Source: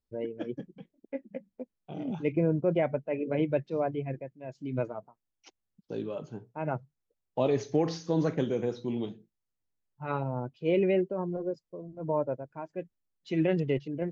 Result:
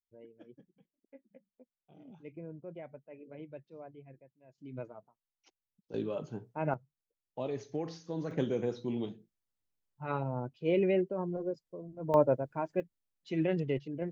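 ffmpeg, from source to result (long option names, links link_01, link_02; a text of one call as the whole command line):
ffmpeg -i in.wav -af "asetnsamples=nb_out_samples=441:pad=0,asendcmd='4.58 volume volume -11dB;5.94 volume volume 0dB;6.74 volume volume -10dB;8.31 volume volume -2.5dB;12.14 volume volume 5dB;12.8 volume volume -4dB',volume=-19dB" out.wav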